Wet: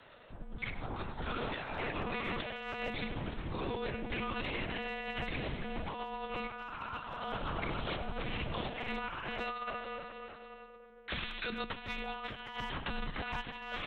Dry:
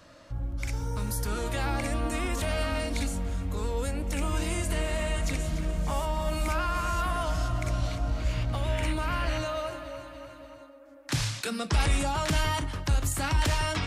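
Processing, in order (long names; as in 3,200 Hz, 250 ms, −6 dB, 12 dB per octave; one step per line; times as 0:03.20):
one-pitch LPC vocoder at 8 kHz 250 Hz
spectral tilt +2 dB per octave
far-end echo of a speakerphone 100 ms, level −11 dB
frequency shifter −27 Hz
compressor whose output falls as the input rises −33 dBFS, ratio −0.5
level −4.5 dB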